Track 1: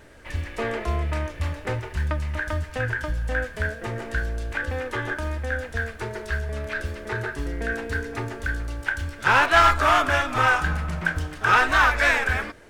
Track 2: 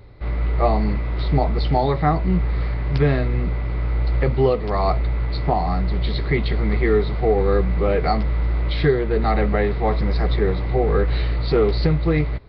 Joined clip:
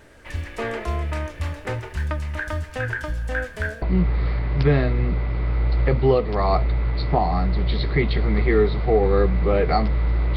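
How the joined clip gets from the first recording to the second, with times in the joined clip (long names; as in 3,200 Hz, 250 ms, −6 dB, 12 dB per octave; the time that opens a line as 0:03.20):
track 1
0:03.82: continue with track 2 from 0:02.17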